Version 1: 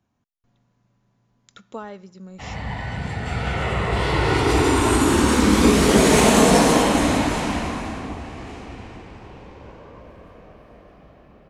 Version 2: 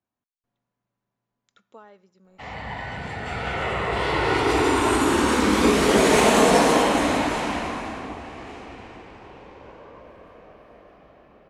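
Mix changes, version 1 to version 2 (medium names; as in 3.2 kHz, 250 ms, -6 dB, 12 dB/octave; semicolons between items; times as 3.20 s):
speech -11.5 dB; master: add tone controls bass -9 dB, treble -5 dB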